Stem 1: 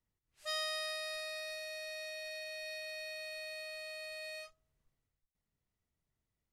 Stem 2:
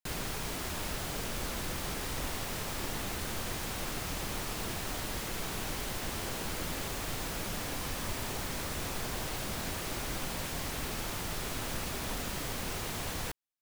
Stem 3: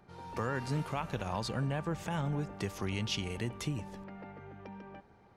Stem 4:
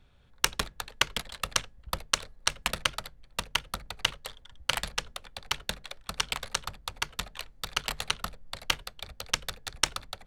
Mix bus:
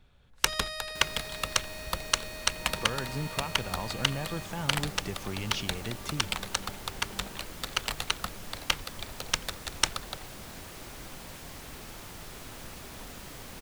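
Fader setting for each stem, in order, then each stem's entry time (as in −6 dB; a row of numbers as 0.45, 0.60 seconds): 0.0, −7.5, −1.0, 0.0 decibels; 0.00, 0.90, 2.45, 0.00 seconds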